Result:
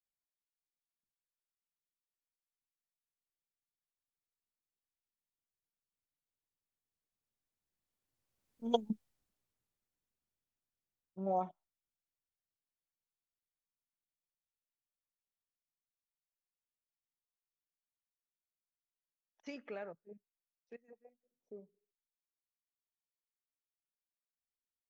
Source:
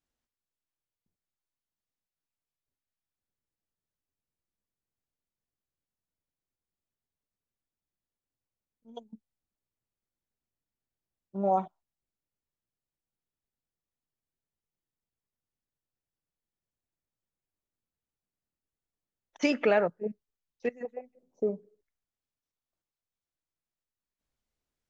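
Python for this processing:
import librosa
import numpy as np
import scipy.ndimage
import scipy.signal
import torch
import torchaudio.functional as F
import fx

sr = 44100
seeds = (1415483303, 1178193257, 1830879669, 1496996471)

y = fx.doppler_pass(x, sr, speed_mps=9, closest_m=1.9, pass_at_s=8.74)
y = F.gain(torch.from_numpy(y), 13.5).numpy()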